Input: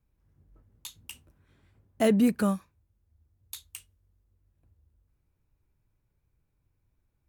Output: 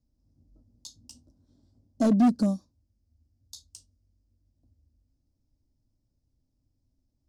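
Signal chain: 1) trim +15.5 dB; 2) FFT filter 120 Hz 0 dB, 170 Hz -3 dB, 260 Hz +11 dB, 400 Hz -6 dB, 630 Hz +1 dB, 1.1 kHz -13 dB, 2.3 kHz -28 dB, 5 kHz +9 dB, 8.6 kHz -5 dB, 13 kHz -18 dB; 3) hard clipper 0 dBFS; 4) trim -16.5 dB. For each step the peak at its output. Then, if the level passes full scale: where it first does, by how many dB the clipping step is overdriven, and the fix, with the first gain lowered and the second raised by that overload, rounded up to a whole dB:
+2.5 dBFS, +9.5 dBFS, 0.0 dBFS, -16.5 dBFS; step 1, 9.5 dB; step 1 +5.5 dB, step 4 -6.5 dB

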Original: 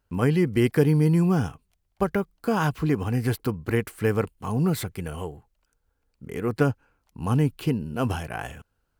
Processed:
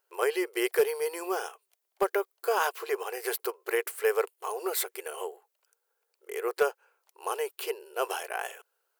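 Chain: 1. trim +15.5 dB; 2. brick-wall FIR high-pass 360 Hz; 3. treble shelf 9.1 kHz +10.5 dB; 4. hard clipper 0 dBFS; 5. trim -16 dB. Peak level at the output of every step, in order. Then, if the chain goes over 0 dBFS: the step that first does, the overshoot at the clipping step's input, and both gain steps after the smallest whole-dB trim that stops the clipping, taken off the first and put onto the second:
+8.0 dBFS, +4.5 dBFS, +5.0 dBFS, 0.0 dBFS, -16.0 dBFS; step 1, 5.0 dB; step 1 +10.5 dB, step 5 -11 dB

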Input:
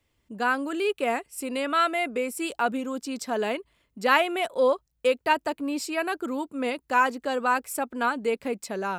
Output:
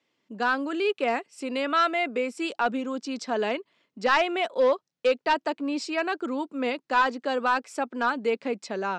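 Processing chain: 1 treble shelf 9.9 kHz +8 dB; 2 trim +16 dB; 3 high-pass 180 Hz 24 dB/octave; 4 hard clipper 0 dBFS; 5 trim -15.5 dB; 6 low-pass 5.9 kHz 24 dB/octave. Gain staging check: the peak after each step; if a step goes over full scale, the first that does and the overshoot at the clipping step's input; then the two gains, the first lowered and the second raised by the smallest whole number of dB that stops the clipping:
-6.5 dBFS, +9.5 dBFS, +10.0 dBFS, 0.0 dBFS, -15.5 dBFS, -14.0 dBFS; step 2, 10.0 dB; step 2 +6 dB, step 5 -5.5 dB

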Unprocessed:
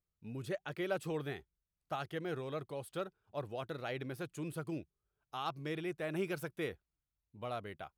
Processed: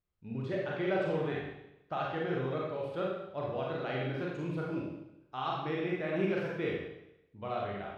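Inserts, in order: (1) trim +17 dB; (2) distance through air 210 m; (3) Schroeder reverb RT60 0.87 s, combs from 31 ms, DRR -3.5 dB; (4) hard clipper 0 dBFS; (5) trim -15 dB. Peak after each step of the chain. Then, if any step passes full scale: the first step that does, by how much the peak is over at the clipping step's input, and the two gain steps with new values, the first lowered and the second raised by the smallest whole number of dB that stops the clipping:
-7.0 dBFS, -8.0 dBFS, -3.5 dBFS, -3.5 dBFS, -18.5 dBFS; nothing clips

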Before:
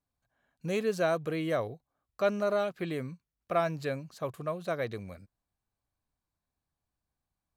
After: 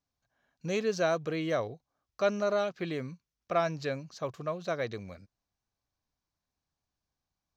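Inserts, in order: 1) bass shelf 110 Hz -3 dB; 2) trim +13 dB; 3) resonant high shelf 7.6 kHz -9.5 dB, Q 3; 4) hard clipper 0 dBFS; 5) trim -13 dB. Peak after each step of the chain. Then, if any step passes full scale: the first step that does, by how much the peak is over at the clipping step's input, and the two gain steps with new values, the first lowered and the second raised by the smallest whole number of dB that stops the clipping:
-15.0 dBFS, -2.0 dBFS, -2.0 dBFS, -2.0 dBFS, -15.0 dBFS; nothing clips

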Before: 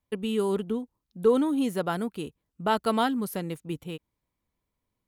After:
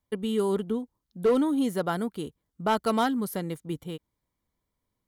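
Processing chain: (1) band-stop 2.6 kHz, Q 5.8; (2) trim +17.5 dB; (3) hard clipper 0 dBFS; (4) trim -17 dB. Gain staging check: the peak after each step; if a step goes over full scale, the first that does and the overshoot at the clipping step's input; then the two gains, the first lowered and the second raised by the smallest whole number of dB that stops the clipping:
-10.5 dBFS, +7.0 dBFS, 0.0 dBFS, -17.0 dBFS; step 2, 7.0 dB; step 2 +10.5 dB, step 4 -10 dB

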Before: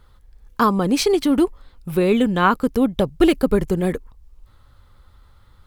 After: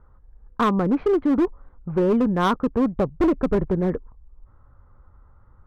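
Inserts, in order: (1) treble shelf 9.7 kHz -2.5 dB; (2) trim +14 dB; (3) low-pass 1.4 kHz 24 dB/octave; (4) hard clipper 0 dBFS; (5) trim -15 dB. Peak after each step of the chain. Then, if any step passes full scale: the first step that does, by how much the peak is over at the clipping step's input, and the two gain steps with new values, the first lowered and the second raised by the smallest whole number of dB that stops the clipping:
-4.0 dBFS, +10.0 dBFS, +9.5 dBFS, 0.0 dBFS, -15.0 dBFS; step 2, 9.5 dB; step 2 +4 dB, step 5 -5 dB

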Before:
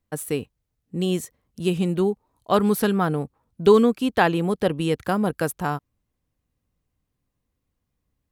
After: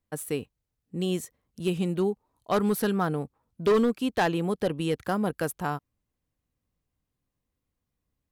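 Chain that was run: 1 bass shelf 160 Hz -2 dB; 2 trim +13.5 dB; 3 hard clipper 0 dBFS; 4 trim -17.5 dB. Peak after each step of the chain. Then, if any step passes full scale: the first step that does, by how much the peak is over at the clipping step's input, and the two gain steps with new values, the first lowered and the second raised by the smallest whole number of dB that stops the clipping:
-4.5 dBFS, +9.0 dBFS, 0.0 dBFS, -17.5 dBFS; step 2, 9.0 dB; step 2 +4.5 dB, step 4 -8.5 dB

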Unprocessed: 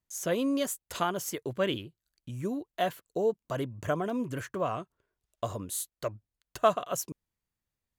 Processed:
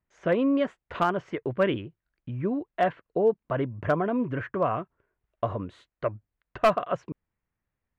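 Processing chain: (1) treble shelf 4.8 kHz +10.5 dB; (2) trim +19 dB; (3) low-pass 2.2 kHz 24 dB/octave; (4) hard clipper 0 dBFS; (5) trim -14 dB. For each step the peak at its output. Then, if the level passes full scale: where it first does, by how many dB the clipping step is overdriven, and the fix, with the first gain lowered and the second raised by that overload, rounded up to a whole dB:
-9.5 dBFS, +9.5 dBFS, +9.0 dBFS, 0.0 dBFS, -14.0 dBFS; step 2, 9.0 dB; step 2 +10 dB, step 5 -5 dB

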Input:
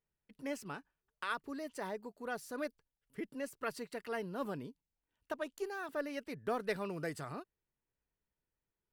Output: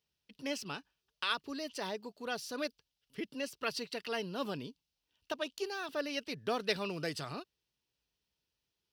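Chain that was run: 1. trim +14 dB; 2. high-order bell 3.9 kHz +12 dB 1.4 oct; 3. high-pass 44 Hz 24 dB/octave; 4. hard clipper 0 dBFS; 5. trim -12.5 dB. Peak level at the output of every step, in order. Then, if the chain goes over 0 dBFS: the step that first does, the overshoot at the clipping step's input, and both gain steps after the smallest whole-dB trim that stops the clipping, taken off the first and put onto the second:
-8.5 dBFS, -5.5 dBFS, -5.0 dBFS, -5.0 dBFS, -17.5 dBFS; nothing clips

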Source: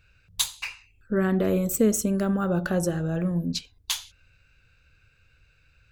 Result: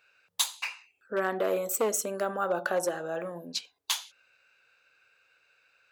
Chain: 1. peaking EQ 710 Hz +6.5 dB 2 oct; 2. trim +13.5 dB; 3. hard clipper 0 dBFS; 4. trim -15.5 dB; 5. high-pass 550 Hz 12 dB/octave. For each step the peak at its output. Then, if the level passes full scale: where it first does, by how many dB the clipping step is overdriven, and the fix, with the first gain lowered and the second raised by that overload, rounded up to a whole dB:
-7.5 dBFS, +6.0 dBFS, 0.0 dBFS, -15.5 dBFS, -13.5 dBFS; step 2, 6.0 dB; step 2 +7.5 dB, step 4 -9.5 dB

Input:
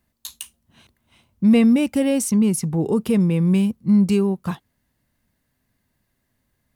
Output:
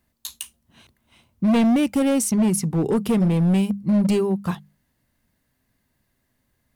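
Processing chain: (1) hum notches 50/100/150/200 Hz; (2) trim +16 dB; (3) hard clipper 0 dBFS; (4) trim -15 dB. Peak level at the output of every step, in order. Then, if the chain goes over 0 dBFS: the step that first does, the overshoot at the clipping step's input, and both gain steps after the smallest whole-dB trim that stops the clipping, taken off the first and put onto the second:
-6.5 dBFS, +9.5 dBFS, 0.0 dBFS, -15.0 dBFS; step 2, 9.5 dB; step 2 +6 dB, step 4 -5 dB

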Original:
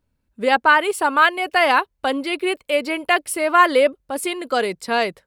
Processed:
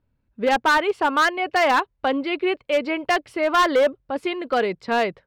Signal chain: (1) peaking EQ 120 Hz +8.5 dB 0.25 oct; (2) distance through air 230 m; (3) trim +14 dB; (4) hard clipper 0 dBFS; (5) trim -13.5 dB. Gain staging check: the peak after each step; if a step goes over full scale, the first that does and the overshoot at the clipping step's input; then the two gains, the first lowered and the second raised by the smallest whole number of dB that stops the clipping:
-2.5 dBFS, -4.5 dBFS, +9.5 dBFS, 0.0 dBFS, -13.5 dBFS; step 3, 9.5 dB; step 3 +4 dB, step 5 -3.5 dB

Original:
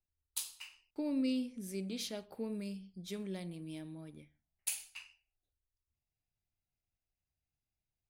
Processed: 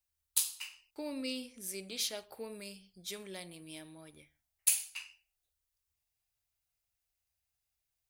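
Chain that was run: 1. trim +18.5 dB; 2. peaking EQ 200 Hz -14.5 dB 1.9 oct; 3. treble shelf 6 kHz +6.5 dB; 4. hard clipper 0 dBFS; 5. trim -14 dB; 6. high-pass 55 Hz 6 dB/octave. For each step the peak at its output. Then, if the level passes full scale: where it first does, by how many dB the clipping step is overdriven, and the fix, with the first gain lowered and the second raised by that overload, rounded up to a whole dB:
-1.5 dBFS, -1.0 dBFS, +4.0 dBFS, 0.0 dBFS, -14.0 dBFS, -14.0 dBFS; step 3, 4.0 dB; step 1 +14.5 dB, step 5 -10 dB

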